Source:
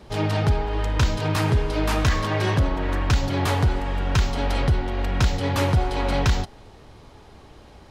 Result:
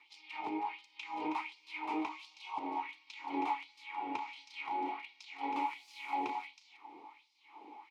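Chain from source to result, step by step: 2.08–2.58 fixed phaser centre 740 Hz, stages 4; 5.61–6.15 requantised 6-bit, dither triangular; compressor 4:1, threshold -27 dBFS, peak gain reduction 10.5 dB; 4.24–4.89 doubler 32 ms -4.5 dB; on a send: tapped delay 0.32/0.365 s -6.5/-19 dB; on the sum: LFO high-pass sine 1.4 Hz 470–5200 Hz; vowel filter u; gain +7 dB

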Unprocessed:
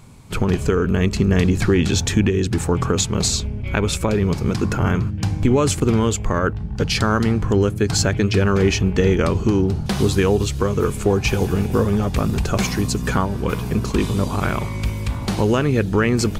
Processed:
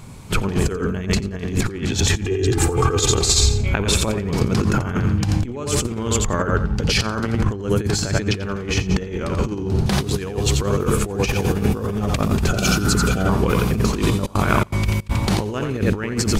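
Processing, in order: thinning echo 87 ms, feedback 30%, high-pass 250 Hz, level -6 dB; 12.55–13.27 spectral repair 790–2300 Hz before; negative-ratio compressor -21 dBFS, ratio -0.5; 2.24–3.61 comb 2.5 ms, depth 75%; 14.15–15.37 step gate "xx.xxx.x" 162 bpm -24 dB; gain +2 dB

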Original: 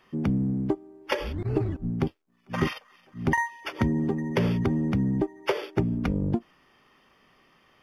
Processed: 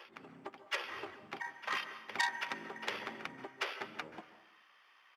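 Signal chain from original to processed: opening faded in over 0.62 s; HPF 1200 Hz 12 dB/oct; high shelf 4600 Hz -9.5 dB; harmoniser -3 st -10 dB, +3 st -16 dB; flange 1 Hz, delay 6 ms, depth 4.6 ms, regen +73%; granular stretch 0.66×, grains 30 ms; reverse echo 0.788 s -12.5 dB; plate-style reverb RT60 0.78 s, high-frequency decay 0.95×, pre-delay 0.12 s, DRR 12.5 dB; core saturation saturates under 4000 Hz; gain +6 dB

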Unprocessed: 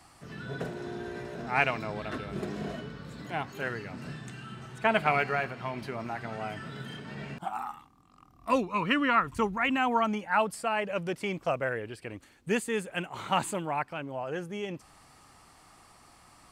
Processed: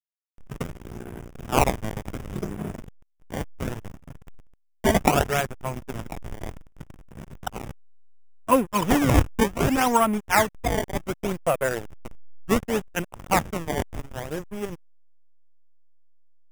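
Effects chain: decimation with a swept rate 19×, swing 160% 0.67 Hz; backlash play -28 dBFS; bell 4200 Hz -14.5 dB 0.26 oct; gain +8 dB

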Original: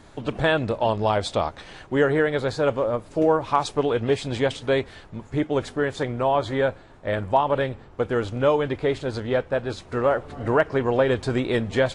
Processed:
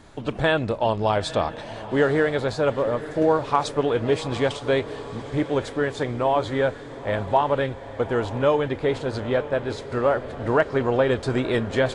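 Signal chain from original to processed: diffused feedback echo 0.886 s, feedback 59%, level -14 dB

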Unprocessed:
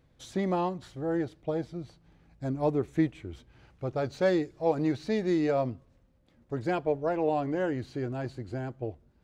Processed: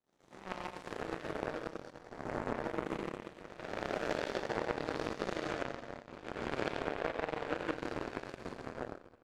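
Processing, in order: spectral swells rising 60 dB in 2.48 s; 2.5–4.42 frequency shift +37 Hz; gate with hold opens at -28 dBFS; AGC gain up to 12.5 dB; harmonic-percussive split harmonic -12 dB; feedback echo 83 ms, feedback 48%, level -10.5 dB; Schroeder reverb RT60 2.8 s, combs from 27 ms, DRR -1.5 dB; power-law curve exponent 3; compressor 4:1, threshold -40 dBFS, peak gain reduction 17.5 dB; gain +6.5 dB

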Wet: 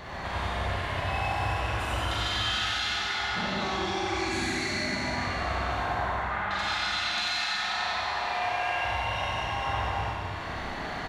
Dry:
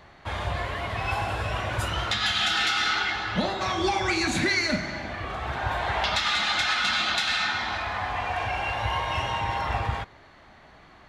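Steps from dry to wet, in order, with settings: 5.8–6.51 LPF 1800 Hz 24 dB/oct; 7.02–8.85 low shelf 260 Hz -11.5 dB; compressor 8:1, threshold -46 dBFS, peak gain reduction 24 dB; echo 93 ms -4 dB; Schroeder reverb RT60 3 s, combs from 32 ms, DRR -7.5 dB; gain +8.5 dB

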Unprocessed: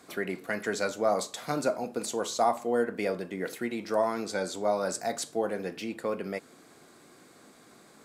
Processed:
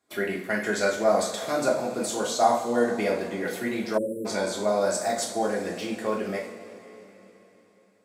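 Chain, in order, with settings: gate -44 dBFS, range -23 dB; two-slope reverb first 0.43 s, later 3.9 s, from -18 dB, DRR -3 dB; spectral delete 3.98–4.26, 600–7200 Hz

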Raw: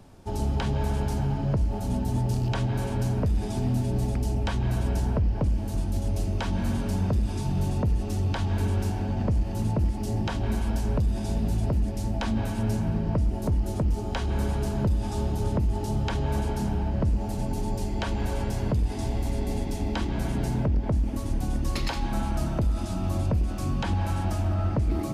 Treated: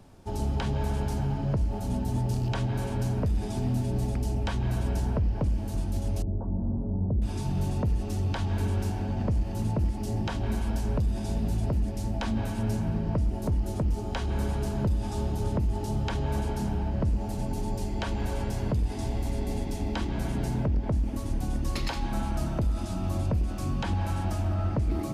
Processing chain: 6.22–7.22 Gaussian blur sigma 12 samples; gain -2 dB

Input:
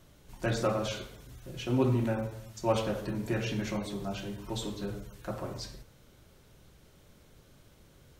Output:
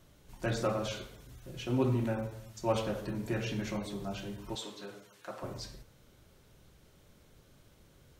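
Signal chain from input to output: 4.55–5.43 weighting filter A; gain -2.5 dB

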